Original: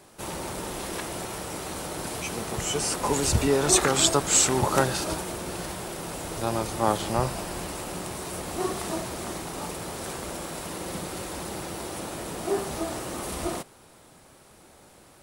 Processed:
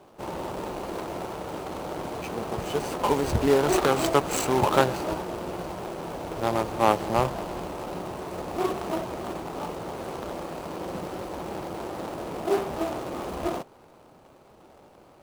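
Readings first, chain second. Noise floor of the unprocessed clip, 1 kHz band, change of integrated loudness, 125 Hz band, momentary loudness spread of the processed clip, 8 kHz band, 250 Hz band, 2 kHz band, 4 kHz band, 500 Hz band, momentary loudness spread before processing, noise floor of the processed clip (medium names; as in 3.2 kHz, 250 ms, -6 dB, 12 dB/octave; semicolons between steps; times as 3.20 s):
-54 dBFS, +2.5 dB, -1.0 dB, -1.5 dB, 13 LU, -12.5 dB, +1.0 dB, -1.5 dB, -6.5 dB, +2.5 dB, 14 LU, -54 dBFS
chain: median filter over 25 samples; bass shelf 310 Hz -9.5 dB; trim +6.5 dB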